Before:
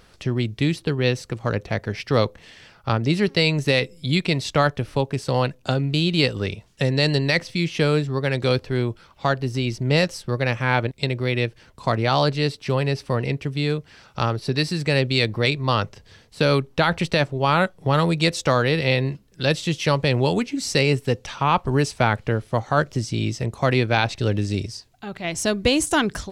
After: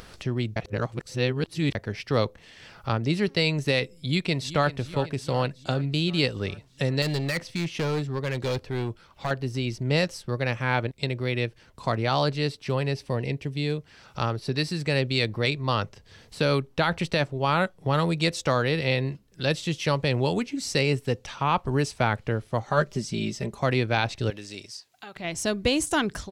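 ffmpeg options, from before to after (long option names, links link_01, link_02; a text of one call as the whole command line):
ffmpeg -i in.wav -filter_complex "[0:a]asplit=2[link_01][link_02];[link_02]afade=type=in:start_time=3.94:duration=0.01,afade=type=out:start_time=4.68:duration=0.01,aecho=0:1:380|760|1140|1520|1900|2280|2660:0.188365|0.122437|0.0795842|0.0517297|0.0336243|0.0218558|0.0142063[link_03];[link_01][link_03]amix=inputs=2:normalize=0,asettb=1/sr,asplit=3[link_04][link_05][link_06];[link_04]atrim=end=7.024[link_07];[link_05]atrim=start=7.02:end=9.31,asetpts=PTS-STARTPTS,afade=type=in:duration=0.004:curve=qsin,afade=type=out:start_time=2.286:duration=0.004:curve=qsin,asoftclip=type=hard:threshold=-18.5dB[link_08];[link_06]atrim=start=9.306[link_09];[link_07][link_08]acrossfade=duration=0.004:curve1=hsin:curve2=qsin[link_10];[link_10][link_09]acrossfade=duration=0.004:curve1=qsin:curve2=hsin,asettb=1/sr,asplit=3[link_11][link_12][link_13];[link_11]atrim=end=12.954[link_14];[link_12]atrim=start=12.95:end=13.78,asetpts=PTS-STARTPTS,afade=type=in:duration=0.004:curve=qsin,afade=type=out:start_time=0.826:duration=0.004:curve=qsin,equalizer=frequency=1300:width_type=o:width=0.47:gain=-8[link_15];[link_13]atrim=start=13.776[link_16];[link_14][link_15]acrossfade=duration=0.004:curve1=hsin:curve2=qsin[link_17];[link_17][link_16]acrossfade=duration=0.004:curve1=qsin:curve2=hsin,asettb=1/sr,asplit=3[link_18][link_19][link_20];[link_18]atrim=end=22.674[link_21];[link_19]atrim=start=22.67:end=23.6,asetpts=PTS-STARTPTS,afade=type=in:duration=0.004:curve=qsin,afade=type=out:start_time=0.926:duration=0.004:curve=qsin,aecho=1:1:5:0.65,atrim=end_sample=41013[link_22];[link_20]atrim=start=23.596[link_23];[link_21][link_22]acrossfade=duration=0.004:curve1=hsin:curve2=qsin[link_24];[link_24][link_23]acrossfade=duration=0.004:curve1=qsin:curve2=hsin,asettb=1/sr,asplit=3[link_25][link_26][link_27];[link_25]atrim=end=24.304[link_28];[link_26]atrim=start=24.3:end=25.16,asetpts=PTS-STARTPTS,afade=type=in:duration=0.004:curve=qsin,afade=type=out:start_time=0.856:duration=0.004:curve=qsin,highpass=frequency=1000:poles=1[link_29];[link_27]atrim=start=25.156[link_30];[link_28][link_29]acrossfade=duration=0.004:curve1=hsin:curve2=qsin[link_31];[link_31][link_30]acrossfade=duration=0.004:curve1=qsin:curve2=hsin,asplit=3[link_32][link_33][link_34];[link_32]atrim=end=0.562[link_35];[link_33]atrim=start=0.558:end=1.752,asetpts=PTS-STARTPTS,areverse[link_36];[link_34]atrim=start=1.748[link_37];[link_35][link_36]acrossfade=duration=0.004:curve1=hsin:curve2=hsin[link_38];[link_38][link_37]acrossfade=duration=0.004:curve1=hsin:curve2=hsin,acompressor=mode=upward:threshold=-32dB:ratio=2.5,volume=-4.5dB" out.wav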